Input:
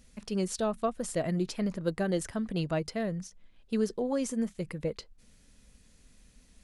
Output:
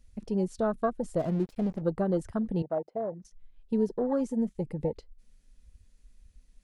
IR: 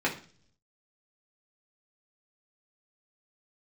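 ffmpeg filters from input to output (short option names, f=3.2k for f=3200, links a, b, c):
-filter_complex "[0:a]asettb=1/sr,asplit=3[a][b][c];[a]atrim=end=2.624[d];[b]atrim=start=2.62:end=3.25,asetpts=PTS-STARTPTS,afade=t=in:d=0.004:c=qsin,afade=t=out:st=0.626:d=0.004:c=qsin,bandpass=f=600:t=q:w=1.6:csg=0[e];[c]atrim=start=3.246[f];[d][e]acrossfade=d=0.004:c1=hsin:c2=qsin[g];[g][f]acrossfade=d=0.004:c1=qsin:c2=hsin,asplit=2[h][i];[i]acompressor=threshold=-37dB:ratio=6,volume=-1dB[j];[h][j]amix=inputs=2:normalize=0,afwtdn=0.02,asplit=3[k][l][m];[k]afade=t=out:st=1.18:d=0.02[n];[l]aeval=exprs='sgn(val(0))*max(abs(val(0))-0.00473,0)':c=same,afade=t=in:st=1.18:d=0.02,afade=t=out:st=1.8:d=0.02[o];[m]afade=t=in:st=1.8:d=0.02[p];[n][o][p]amix=inputs=3:normalize=0"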